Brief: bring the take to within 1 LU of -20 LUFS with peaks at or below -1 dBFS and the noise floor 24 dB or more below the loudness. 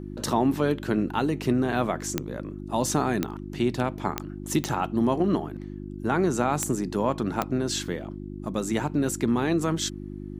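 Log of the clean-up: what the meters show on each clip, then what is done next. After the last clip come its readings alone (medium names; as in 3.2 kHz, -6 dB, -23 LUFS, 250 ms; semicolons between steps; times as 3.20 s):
clicks found 6; hum 50 Hz; highest harmonic 350 Hz; hum level -35 dBFS; loudness -27.0 LUFS; peak level -9.0 dBFS; loudness target -20.0 LUFS
-> de-click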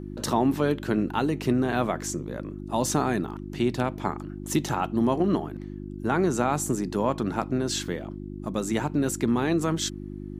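clicks found 0; hum 50 Hz; highest harmonic 350 Hz; hum level -35 dBFS
-> de-hum 50 Hz, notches 7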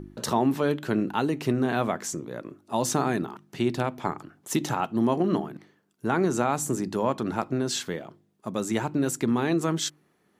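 hum not found; loudness -27.5 LUFS; peak level -9.5 dBFS; loudness target -20.0 LUFS
-> trim +7.5 dB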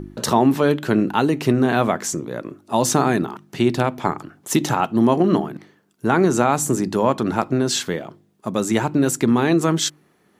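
loudness -20.0 LUFS; peak level -2.0 dBFS; noise floor -60 dBFS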